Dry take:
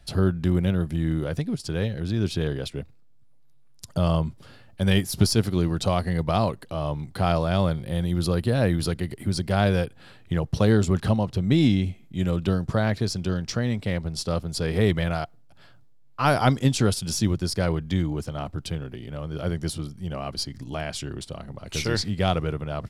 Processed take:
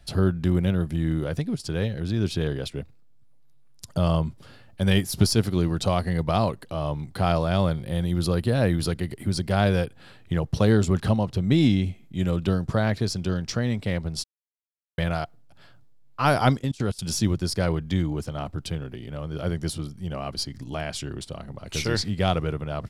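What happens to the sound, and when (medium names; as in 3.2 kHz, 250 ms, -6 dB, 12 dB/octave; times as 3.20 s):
14.24–14.98 s: mute
16.57–16.99 s: level held to a coarse grid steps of 24 dB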